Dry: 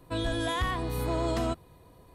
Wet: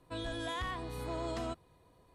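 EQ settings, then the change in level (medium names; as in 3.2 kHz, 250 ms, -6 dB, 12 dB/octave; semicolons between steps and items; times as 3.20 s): low-pass 9.8 kHz 12 dB/octave; bass shelf 350 Hz -4 dB; -7.0 dB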